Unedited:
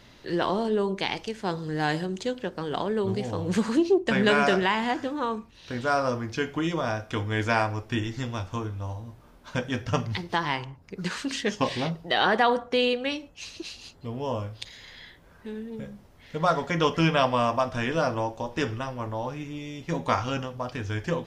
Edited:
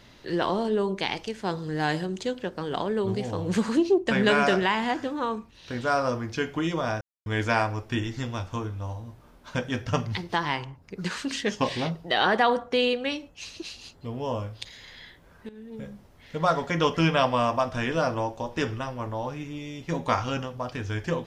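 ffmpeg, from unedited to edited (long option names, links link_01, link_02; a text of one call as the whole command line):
ffmpeg -i in.wav -filter_complex "[0:a]asplit=4[link_01][link_02][link_03][link_04];[link_01]atrim=end=7.01,asetpts=PTS-STARTPTS,afade=type=out:start_time=7.006:duration=0.004:curve=hsin[link_05];[link_02]atrim=start=7.01:end=7.26,asetpts=PTS-STARTPTS,volume=0[link_06];[link_03]atrim=start=7.26:end=15.49,asetpts=PTS-STARTPTS,afade=type=in:duration=0.004:curve=hsin,afade=type=out:start_time=8.226:duration=0.004:curve=hsin:silence=0.177828[link_07];[link_04]atrim=start=15.49,asetpts=PTS-STARTPTS,afade=type=in:duration=0.37:silence=0.177828[link_08];[link_05][link_06][link_07][link_08]concat=n=4:v=0:a=1" out.wav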